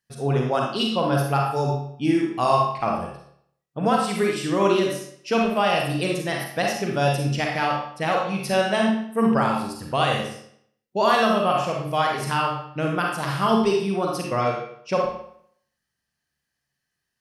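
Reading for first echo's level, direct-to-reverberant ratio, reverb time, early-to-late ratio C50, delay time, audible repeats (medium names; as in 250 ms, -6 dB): no echo, -1.5 dB, 0.65 s, 1.0 dB, no echo, no echo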